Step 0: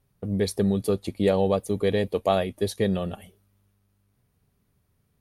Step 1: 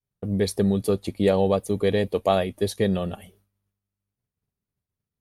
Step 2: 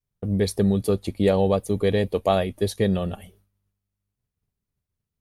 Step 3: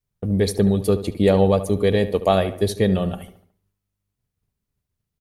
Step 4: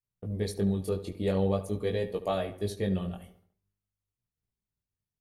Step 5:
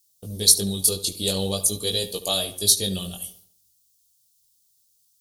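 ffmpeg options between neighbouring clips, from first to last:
-af "agate=range=-33dB:threshold=-56dB:ratio=3:detection=peak,volume=1.5dB"
-af "lowshelf=f=63:g=11"
-filter_complex "[0:a]asplit=2[a][b];[b]adelay=73,lowpass=f=2.6k:p=1,volume=-12.5dB,asplit=2[c][d];[d]adelay=73,lowpass=f=2.6k:p=1,volume=0.48,asplit=2[e][f];[f]adelay=73,lowpass=f=2.6k:p=1,volume=0.48,asplit=2[g][h];[h]adelay=73,lowpass=f=2.6k:p=1,volume=0.48,asplit=2[i][j];[j]adelay=73,lowpass=f=2.6k:p=1,volume=0.48[k];[a][c][e][g][i][k]amix=inputs=6:normalize=0,volume=3dB"
-af "flanger=delay=17:depth=5.3:speed=0.46,volume=-9dB"
-af "aexciter=amount=11.6:drive=9.5:freq=3.3k"

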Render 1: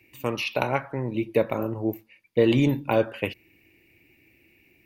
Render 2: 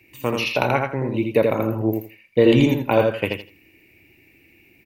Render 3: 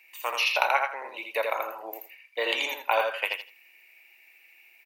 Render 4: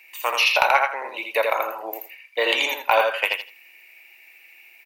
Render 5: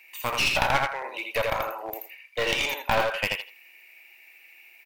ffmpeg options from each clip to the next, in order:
-af "aecho=1:1:82|164|246:0.631|0.114|0.0204,volume=4dB"
-af "highpass=f=730:w=0.5412,highpass=f=730:w=1.3066"
-af "acontrast=72"
-af "aeval=exprs='clip(val(0),-1,0.0596)':c=same,volume=-2.5dB"

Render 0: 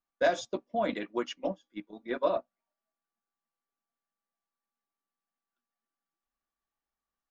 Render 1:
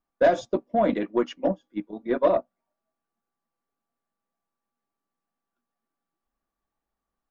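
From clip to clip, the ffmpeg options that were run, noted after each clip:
-af "tiltshelf=f=1.5k:g=7,aeval=exprs='0.299*(cos(1*acos(clip(val(0)/0.299,-1,1)))-cos(1*PI/2))+0.0133*(cos(5*acos(clip(val(0)/0.299,-1,1)))-cos(5*PI/2))+0.00188*(cos(8*acos(clip(val(0)/0.299,-1,1)))-cos(8*PI/2))':c=same,volume=2dB"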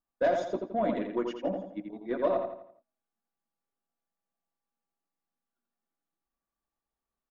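-filter_complex "[0:a]asplit=2[a][b];[b]adelay=84,lowpass=f=4.7k:p=1,volume=-5dB,asplit=2[c][d];[d]adelay=84,lowpass=f=4.7k:p=1,volume=0.43,asplit=2[e][f];[f]adelay=84,lowpass=f=4.7k:p=1,volume=0.43,asplit=2[g][h];[h]adelay=84,lowpass=f=4.7k:p=1,volume=0.43,asplit=2[i][j];[j]adelay=84,lowpass=f=4.7k:p=1,volume=0.43[k];[a][c][e][g][i][k]amix=inputs=6:normalize=0,volume=-7.5dB"

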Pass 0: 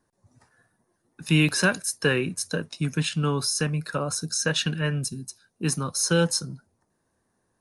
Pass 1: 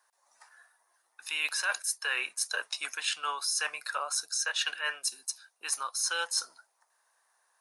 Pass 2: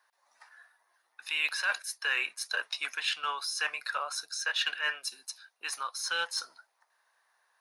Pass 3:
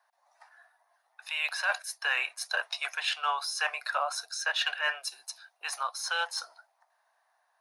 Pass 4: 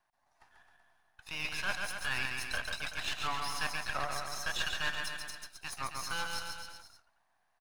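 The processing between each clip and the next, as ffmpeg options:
-af "highpass=f=800:w=0.5412,highpass=f=800:w=1.3066,areverse,acompressor=threshold=-35dB:ratio=5,areverse,volume=6dB"
-filter_complex "[0:a]equalizer=f=2k:t=o:w=1:g=4,equalizer=f=4k:t=o:w=1:g=4,equalizer=f=8k:t=o:w=1:g=-10,asplit=2[a][b];[b]asoftclip=type=tanh:threshold=-29dB,volume=-10dB[c];[a][c]amix=inputs=2:normalize=0,volume=-3dB"
-af "highpass=f=690:t=q:w=4.4,dynaudnorm=f=320:g=9:m=4.5dB,volume=-4.5dB"
-filter_complex "[0:a]aeval=exprs='if(lt(val(0),0),0.251*val(0),val(0))':c=same,asplit=2[a][b];[b]aecho=0:1:140|266|379.4|481.5|573.3:0.631|0.398|0.251|0.158|0.1[c];[a][c]amix=inputs=2:normalize=0,volume=-3.5dB"

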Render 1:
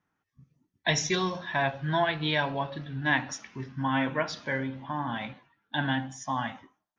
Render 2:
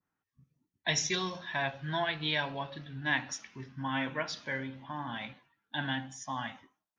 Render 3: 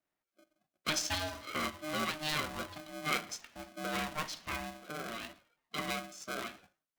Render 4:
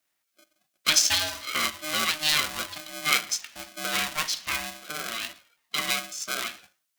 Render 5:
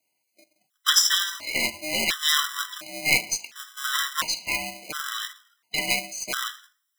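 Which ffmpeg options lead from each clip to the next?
-af "adynamicequalizer=threshold=0.00794:dfrequency=1700:dqfactor=0.7:tfrequency=1700:tqfactor=0.7:attack=5:release=100:ratio=0.375:range=3:mode=boostabove:tftype=highshelf,volume=-7dB"
-af "aeval=exprs='val(0)*sgn(sin(2*PI*460*n/s))':c=same,volume=-3dB"
-af "tiltshelf=f=1.4k:g=-8,volume=7.5dB"
-af "lowshelf=f=62:g=-10,aeval=exprs='0.891*(cos(1*acos(clip(val(0)/0.891,-1,1)))-cos(1*PI/2))+0.126*(cos(4*acos(clip(val(0)/0.891,-1,1)))-cos(4*PI/2))':c=same,afftfilt=real='re*gt(sin(2*PI*0.71*pts/sr)*(1-2*mod(floor(b*sr/1024/1000),2)),0)':imag='im*gt(sin(2*PI*0.71*pts/sr)*(1-2*mod(floor(b*sr/1024/1000),2)),0)':win_size=1024:overlap=0.75,volume=4.5dB"

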